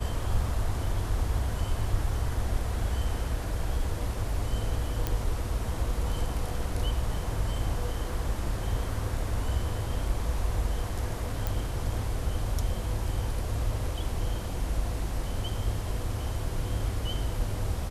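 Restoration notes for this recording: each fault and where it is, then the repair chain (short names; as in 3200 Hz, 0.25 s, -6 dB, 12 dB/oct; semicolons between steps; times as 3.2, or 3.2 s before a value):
5.07 pop -14 dBFS
11.47 pop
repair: de-click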